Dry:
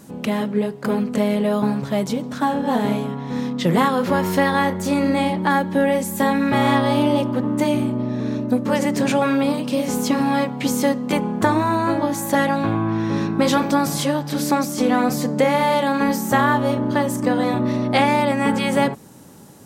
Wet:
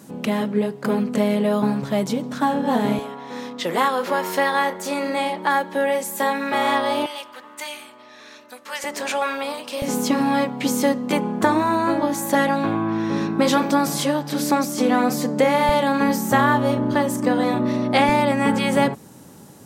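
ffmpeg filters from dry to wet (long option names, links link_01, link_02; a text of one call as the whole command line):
ffmpeg -i in.wav -af "asetnsamples=nb_out_samples=441:pad=0,asendcmd='2.99 highpass f 440;7.06 highpass f 1500;8.84 highpass f 680;9.82 highpass f 170;15.69 highpass f 58;16.94 highpass f 140;18.09 highpass f 50',highpass=120" out.wav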